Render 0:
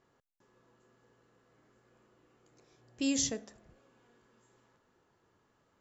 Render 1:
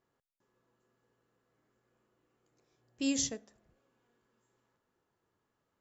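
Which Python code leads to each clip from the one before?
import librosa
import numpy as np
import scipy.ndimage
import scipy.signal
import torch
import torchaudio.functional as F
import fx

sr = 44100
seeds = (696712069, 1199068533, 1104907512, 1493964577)

y = fx.upward_expand(x, sr, threshold_db=-46.0, expansion=1.5)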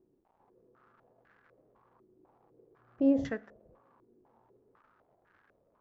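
y = fx.dmg_crackle(x, sr, seeds[0], per_s=350.0, level_db=-57.0)
y = fx.filter_held_lowpass(y, sr, hz=4.0, low_hz=350.0, high_hz=1600.0)
y = F.gain(torch.from_numpy(y), 5.0).numpy()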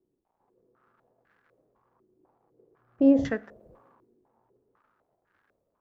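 y = fx.band_widen(x, sr, depth_pct=70)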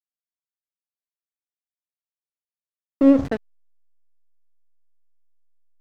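y = fx.backlash(x, sr, play_db=-24.0)
y = F.gain(torch.from_numpy(y), 5.5).numpy()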